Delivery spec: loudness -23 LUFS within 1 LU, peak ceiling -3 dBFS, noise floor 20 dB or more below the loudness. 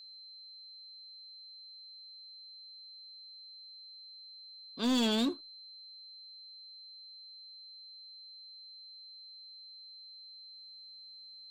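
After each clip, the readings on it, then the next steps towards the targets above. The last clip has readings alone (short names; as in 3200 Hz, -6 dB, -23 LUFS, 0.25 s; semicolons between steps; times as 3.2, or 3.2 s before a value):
clipped 0.4%; flat tops at -25.0 dBFS; steady tone 4100 Hz; tone level -49 dBFS; loudness -41.5 LUFS; peak -25.0 dBFS; loudness target -23.0 LUFS
-> clip repair -25 dBFS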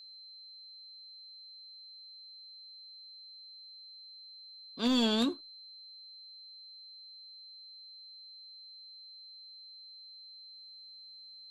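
clipped 0.0%; steady tone 4100 Hz; tone level -49 dBFS
-> notch 4100 Hz, Q 30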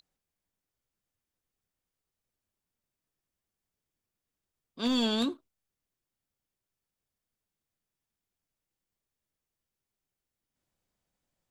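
steady tone none; loudness -29.5 LUFS; peak -16.5 dBFS; loudness target -23.0 LUFS
-> gain +6.5 dB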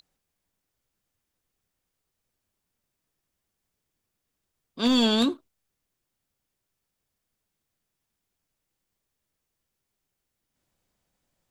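loudness -23.0 LUFS; peak -10.0 dBFS; noise floor -83 dBFS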